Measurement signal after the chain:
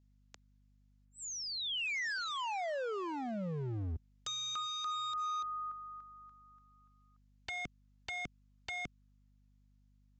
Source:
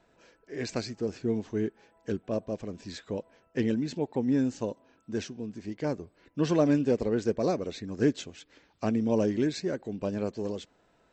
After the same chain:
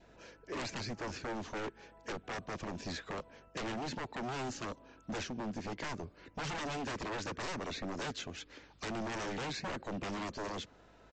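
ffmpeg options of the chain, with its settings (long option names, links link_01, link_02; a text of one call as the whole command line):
ffmpeg -i in.wav -filter_complex "[0:a]adynamicequalizer=threshold=0.00398:dfrequency=1200:dqfactor=3.2:tfrequency=1200:tqfactor=3.2:attack=5:release=100:ratio=0.375:range=2.5:mode=boostabove:tftype=bell,acrossover=split=97|310|1200|2400[link_01][link_02][link_03][link_04][link_05];[link_01]acompressor=threshold=-48dB:ratio=4[link_06];[link_02]acompressor=threshold=-39dB:ratio=4[link_07];[link_03]acompressor=threshold=-40dB:ratio=4[link_08];[link_04]acompressor=threshold=-46dB:ratio=4[link_09];[link_05]acompressor=threshold=-49dB:ratio=4[link_10];[link_06][link_07][link_08][link_09][link_10]amix=inputs=5:normalize=0,aeval=exprs='val(0)+0.000282*(sin(2*PI*50*n/s)+sin(2*PI*2*50*n/s)/2+sin(2*PI*3*50*n/s)/3+sin(2*PI*4*50*n/s)/4+sin(2*PI*5*50*n/s)/5)':channel_layout=same,aresample=16000,aeval=exprs='0.0126*(abs(mod(val(0)/0.0126+3,4)-2)-1)':channel_layout=same,aresample=44100,volume=4.5dB" out.wav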